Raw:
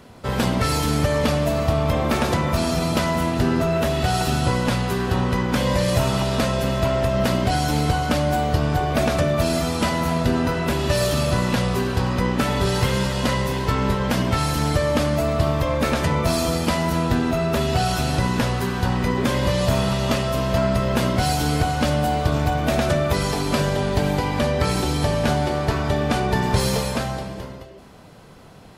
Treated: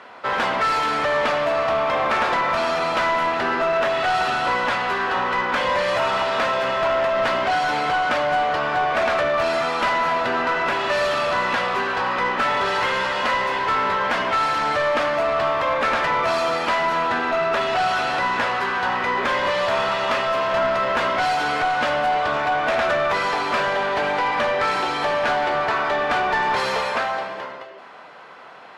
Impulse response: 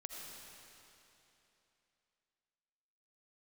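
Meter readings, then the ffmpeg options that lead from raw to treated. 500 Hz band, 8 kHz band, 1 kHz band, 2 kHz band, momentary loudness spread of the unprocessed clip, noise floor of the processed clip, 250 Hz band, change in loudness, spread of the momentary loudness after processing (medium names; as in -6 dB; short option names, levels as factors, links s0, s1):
+0.5 dB, -10.0 dB, +5.5 dB, +7.0 dB, 2 LU, -36 dBFS, -11.0 dB, +0.5 dB, 2 LU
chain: -filter_complex "[0:a]bandpass=f=1500:t=q:w=0.76:csg=0,asplit=2[s0][s1];[s1]highpass=f=720:p=1,volume=8.91,asoftclip=type=tanh:threshold=0.299[s2];[s0][s2]amix=inputs=2:normalize=0,lowpass=f=2100:p=1,volume=0.501"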